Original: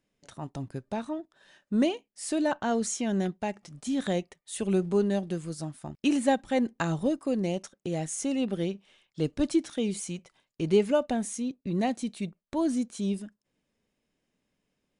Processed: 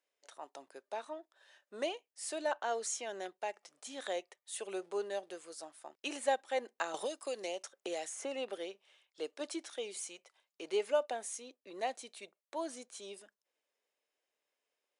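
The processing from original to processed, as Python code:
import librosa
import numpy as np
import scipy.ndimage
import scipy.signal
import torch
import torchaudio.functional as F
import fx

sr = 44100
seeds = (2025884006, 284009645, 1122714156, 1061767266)

y = scipy.signal.sosfilt(scipy.signal.butter(4, 460.0, 'highpass', fs=sr, output='sos'), x)
y = fx.band_squash(y, sr, depth_pct=100, at=(6.94, 8.58))
y = F.gain(torch.from_numpy(y), -5.0).numpy()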